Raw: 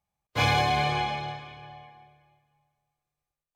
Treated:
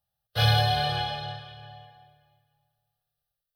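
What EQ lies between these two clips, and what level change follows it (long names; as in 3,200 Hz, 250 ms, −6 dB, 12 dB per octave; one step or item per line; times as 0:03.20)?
parametric band 110 Hz +10 dB 0.22 octaves
high-shelf EQ 3,300 Hz +10 dB
phaser with its sweep stopped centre 1,500 Hz, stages 8
0.0 dB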